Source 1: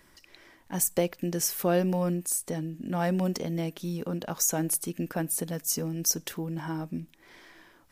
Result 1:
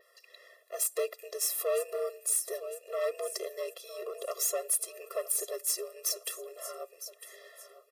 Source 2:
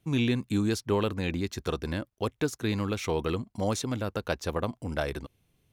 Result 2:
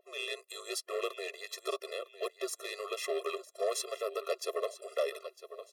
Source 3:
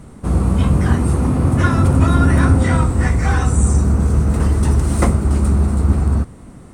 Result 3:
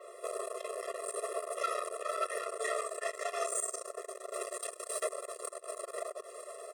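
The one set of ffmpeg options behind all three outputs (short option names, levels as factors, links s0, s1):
-filter_complex "[0:a]acrossover=split=120|2700[s0][s1][s2];[s2]dynaudnorm=f=130:g=3:m=1.68[s3];[s0][s1][s3]amix=inputs=3:normalize=0,aeval=exprs='val(0)+0.0126*(sin(2*PI*60*n/s)+sin(2*PI*2*60*n/s)/2+sin(2*PI*3*60*n/s)/3+sin(2*PI*4*60*n/s)/4+sin(2*PI*5*60*n/s)/5)':c=same,asplit=2[s4][s5];[s5]aecho=0:1:955|1910|2865:0.158|0.0571|0.0205[s6];[s4][s6]amix=inputs=2:normalize=0,afreqshift=-76,equalizer=f=250:t=o:w=0.67:g=-10,equalizer=f=630:t=o:w=0.67:g=8,equalizer=f=6300:t=o:w=0.67:g=-4,acompressor=threshold=0.141:ratio=6,asoftclip=type=tanh:threshold=0.0631,adynamicequalizer=threshold=0.00355:dfrequency=9100:dqfactor=1.4:tfrequency=9100:tqfactor=1.4:attack=5:release=100:ratio=0.375:range=2.5:mode=boostabove:tftype=bell,afftfilt=real='re*eq(mod(floor(b*sr/1024/350),2),1)':imag='im*eq(mod(floor(b*sr/1024/350),2),1)':win_size=1024:overlap=0.75"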